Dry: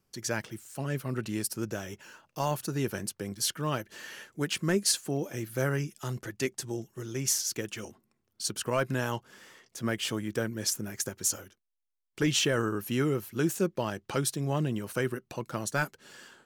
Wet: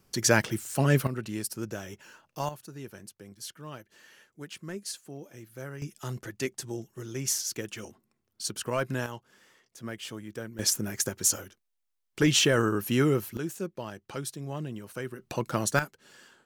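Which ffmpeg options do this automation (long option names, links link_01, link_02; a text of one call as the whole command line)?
ffmpeg -i in.wav -af "asetnsamples=nb_out_samples=441:pad=0,asendcmd='1.07 volume volume -1.5dB;2.49 volume volume -11.5dB;5.82 volume volume -1dB;9.06 volume volume -7.5dB;10.59 volume volume 4dB;13.37 volume volume -6.5dB;15.19 volume volume 5.5dB;15.79 volume volume -4dB',volume=10dB" out.wav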